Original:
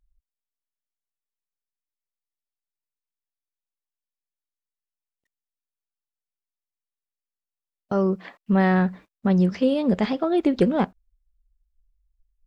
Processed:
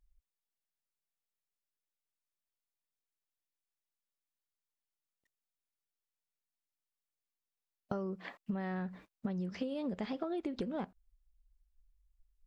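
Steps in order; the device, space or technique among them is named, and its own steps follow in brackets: serial compression, leveller first (compression 2.5:1, threshold -23 dBFS, peak gain reduction 6.5 dB; compression 10:1, threshold -31 dBFS, peak gain reduction 12 dB); trim -3 dB

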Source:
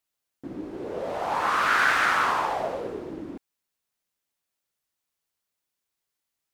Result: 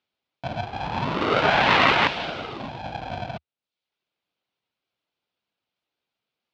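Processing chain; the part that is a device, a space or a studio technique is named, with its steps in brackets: reverb removal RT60 0.72 s; 2.07–3.00 s: high-order bell 970 Hz -13.5 dB 2.3 oct; ring modulator pedal into a guitar cabinet (polarity switched at an audio rate 410 Hz; cabinet simulation 75–3900 Hz, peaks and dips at 77 Hz -5 dB, 1.1 kHz -4 dB, 1.8 kHz -8 dB); trim +8.5 dB

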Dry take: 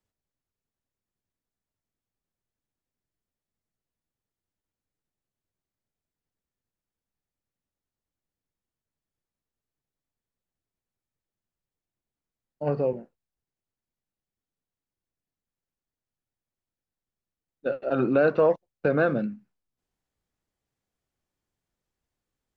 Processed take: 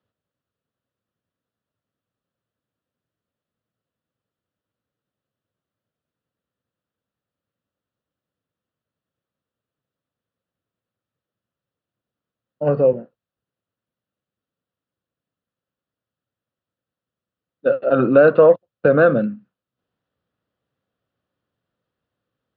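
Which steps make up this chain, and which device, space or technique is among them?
guitar cabinet (cabinet simulation 110–3600 Hz, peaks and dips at 110 Hz +4 dB, 370 Hz -3 dB, 530 Hz +5 dB, 850 Hz -6 dB, 1.3 kHz +4 dB, 2.2 kHz -9 dB); trim +7.5 dB

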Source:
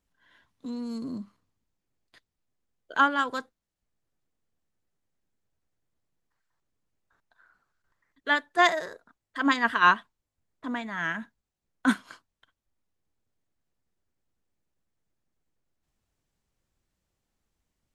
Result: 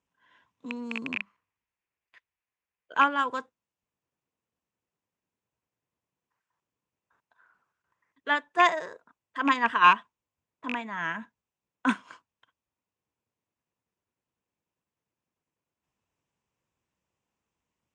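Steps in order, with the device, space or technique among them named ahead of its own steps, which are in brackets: car door speaker with a rattle (rattle on loud lows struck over -35 dBFS, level -17 dBFS; cabinet simulation 94–8000 Hz, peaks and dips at 480 Hz +3 dB, 1 kHz +8 dB, 2.6 kHz +6 dB, 4.3 kHz -8 dB); 1.15–2.92 s: graphic EQ 125/250/500/1000/2000/4000/8000 Hz -10/-10/-4/-3/+7/-4/-6 dB; trim -3 dB

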